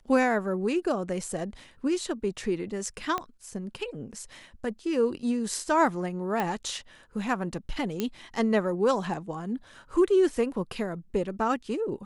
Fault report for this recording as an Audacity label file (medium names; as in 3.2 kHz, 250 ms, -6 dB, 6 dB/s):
3.180000	3.180000	pop -16 dBFS
6.400000	6.400000	pop -15 dBFS
8.000000	8.000000	pop -14 dBFS